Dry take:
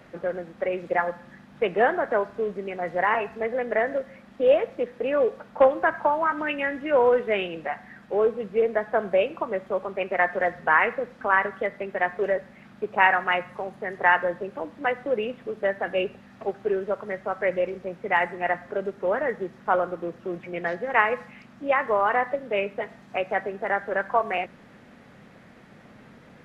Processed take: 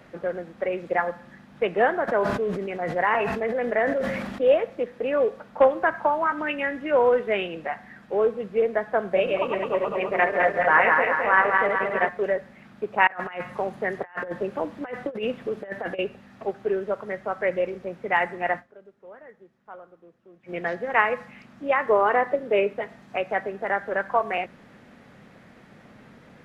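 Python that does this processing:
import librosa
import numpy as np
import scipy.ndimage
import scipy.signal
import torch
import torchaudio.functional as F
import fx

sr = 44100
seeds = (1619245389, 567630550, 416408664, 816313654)

y = fx.sustainer(x, sr, db_per_s=33.0, at=(2.07, 4.44), fade=0.02)
y = fx.reverse_delay_fb(y, sr, ms=105, feedback_pct=76, wet_db=-2.5, at=(9.06, 12.09))
y = fx.over_compress(y, sr, threshold_db=-29.0, ratio=-0.5, at=(13.07, 15.99))
y = fx.peak_eq(y, sr, hz=390.0, db=8.0, octaves=0.88, at=(21.89, 22.73))
y = fx.edit(y, sr, fx.fade_down_up(start_s=18.59, length_s=1.91, db=-20.5, fade_s=0.26, curve='exp'), tone=tone)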